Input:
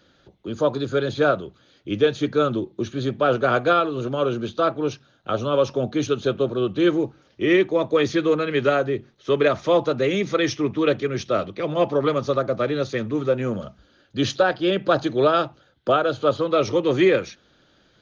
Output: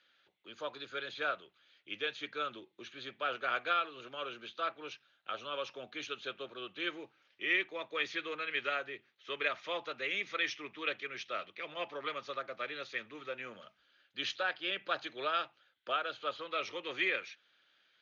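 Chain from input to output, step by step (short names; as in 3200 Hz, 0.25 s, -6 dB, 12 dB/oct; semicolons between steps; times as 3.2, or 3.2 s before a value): band-pass 2400 Hz, Q 1.8; gain -3.5 dB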